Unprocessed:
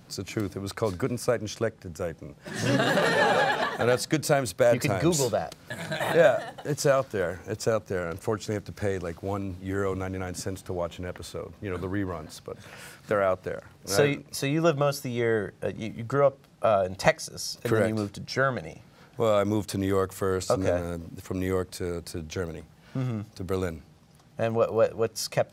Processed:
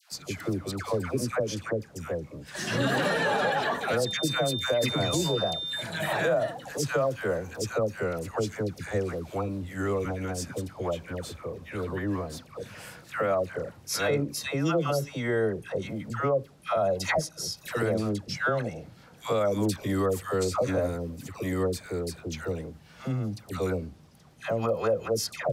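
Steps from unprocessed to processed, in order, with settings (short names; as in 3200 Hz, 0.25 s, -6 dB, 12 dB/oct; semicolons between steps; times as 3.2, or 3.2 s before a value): dispersion lows, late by 0.123 s, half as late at 940 Hz; 4.05–5.81 whine 3600 Hz -31 dBFS; limiter -17 dBFS, peak gain reduction 9 dB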